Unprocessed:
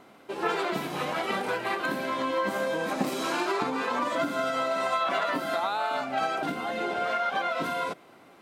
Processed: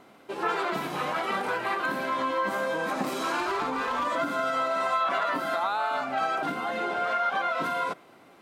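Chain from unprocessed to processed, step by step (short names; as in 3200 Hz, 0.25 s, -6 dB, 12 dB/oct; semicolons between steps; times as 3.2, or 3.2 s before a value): dynamic EQ 1200 Hz, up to +6 dB, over -40 dBFS, Q 1.1; in parallel at 0 dB: limiter -22.5 dBFS, peak gain reduction 11.5 dB; 3.4–4.06 on the sum: hard clip -17.5 dBFS, distortion -24 dB; gain -6.5 dB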